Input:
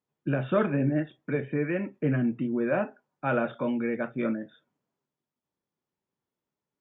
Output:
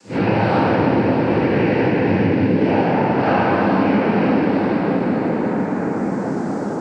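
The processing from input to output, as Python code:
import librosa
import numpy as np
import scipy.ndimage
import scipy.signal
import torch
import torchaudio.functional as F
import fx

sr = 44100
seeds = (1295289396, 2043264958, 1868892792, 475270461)

y = fx.spec_blur(x, sr, span_ms=184.0)
y = fx.bass_treble(y, sr, bass_db=-5, treble_db=10)
y = fx.noise_vocoder(y, sr, seeds[0], bands=8)
y = fx.rev_plate(y, sr, seeds[1], rt60_s=4.6, hf_ratio=0.5, predelay_ms=0, drr_db=-7.5)
y = fx.band_squash(y, sr, depth_pct=100)
y = F.gain(torch.from_numpy(y), 7.5).numpy()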